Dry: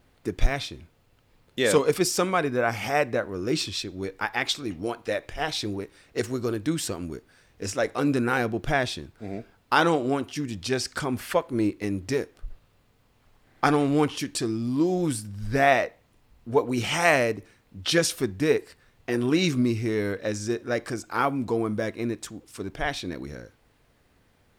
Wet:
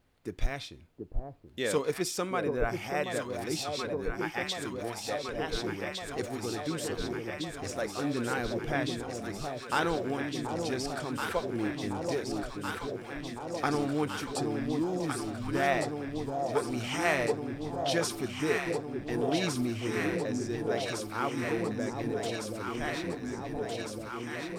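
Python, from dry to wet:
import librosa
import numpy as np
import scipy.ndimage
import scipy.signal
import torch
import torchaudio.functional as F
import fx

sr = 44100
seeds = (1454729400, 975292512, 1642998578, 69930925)

y = fx.quant_float(x, sr, bits=6)
y = fx.echo_alternate(y, sr, ms=729, hz=890.0, feedback_pct=88, wet_db=-4.0)
y = y * librosa.db_to_amplitude(-8.5)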